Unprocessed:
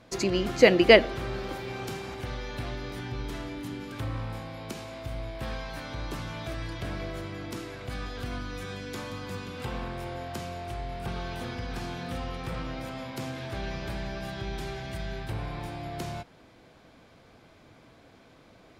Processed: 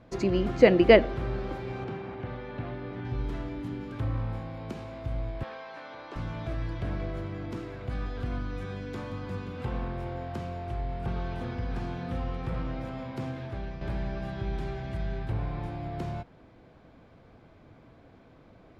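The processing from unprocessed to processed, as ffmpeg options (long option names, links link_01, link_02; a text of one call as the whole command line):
ffmpeg -i in.wav -filter_complex "[0:a]asettb=1/sr,asplit=3[link_01][link_02][link_03];[link_01]atrim=end=1.844[link_04];[link_02]atrim=start=1.84:end=3.05,asetpts=PTS-STARTPTS,afade=type=in:duration=0.004:curve=qsin,afade=type=out:start_time=1.206:duration=0.004:curve=qsin,highpass=110,lowpass=3100[link_05];[link_03]atrim=start=3.046[link_06];[link_04][link_05]acrossfade=duration=0.004:curve1=hsin:curve2=qsin[link_07];[link_07][link_06]acrossfade=duration=0.004:curve1=qsin:curve2=hsin,asettb=1/sr,asplit=3[link_08][link_09][link_10];[link_08]atrim=end=5.434[link_11];[link_09]atrim=start=5.43:end=6.16,asetpts=PTS-STARTPTS,afade=type=in:duration=0.004:curve=qsin,afade=type=out:start_time=0.726:duration=0.004:curve=qsin,highpass=490,lowpass=5500[link_12];[link_10]atrim=start=6.156[link_13];[link_11][link_12]acrossfade=duration=0.004:curve1=hsin:curve2=qsin[link_14];[link_14][link_13]acrossfade=duration=0.004:curve1=qsin:curve2=hsin,asplit=2[link_15][link_16];[link_15]atrim=end=13.81,asetpts=PTS-STARTPTS,afade=type=out:start_time=13.27:duration=0.54:silence=0.421697[link_17];[link_16]atrim=start=13.81,asetpts=PTS-STARTPTS,afade=type=in:duration=0.004:curve=hsin:silence=0.421697[link_18];[link_17][link_18]concat=n=2:v=0:a=1,lowpass=frequency=1400:poles=1,lowshelf=frequency=160:gain=5" out.wav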